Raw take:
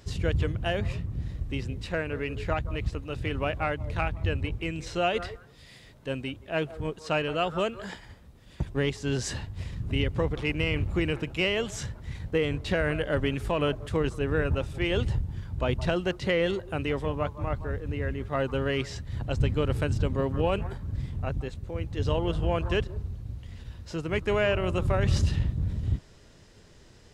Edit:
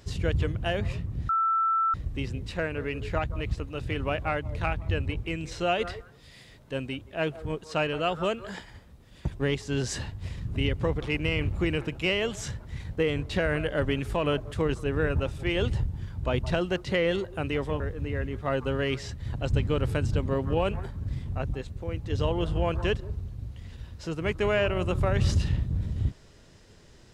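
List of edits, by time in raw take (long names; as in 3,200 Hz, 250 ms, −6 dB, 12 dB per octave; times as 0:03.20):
0:01.29: insert tone 1,330 Hz −21.5 dBFS 0.65 s
0:17.15–0:17.67: remove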